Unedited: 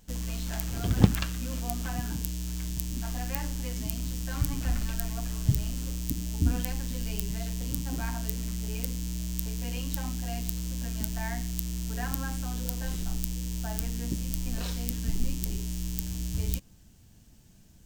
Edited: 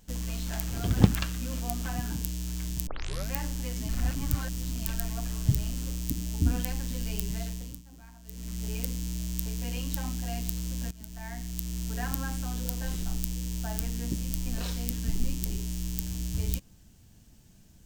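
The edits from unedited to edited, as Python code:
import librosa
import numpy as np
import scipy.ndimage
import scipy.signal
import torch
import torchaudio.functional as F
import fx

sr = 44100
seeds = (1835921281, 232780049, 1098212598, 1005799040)

y = fx.edit(x, sr, fx.tape_start(start_s=2.87, length_s=0.44),
    fx.reverse_span(start_s=3.89, length_s=0.98),
    fx.fade_down_up(start_s=7.4, length_s=1.26, db=-18.5, fade_s=0.42),
    fx.fade_in_from(start_s=10.91, length_s=0.91, floor_db=-18.5), tone=tone)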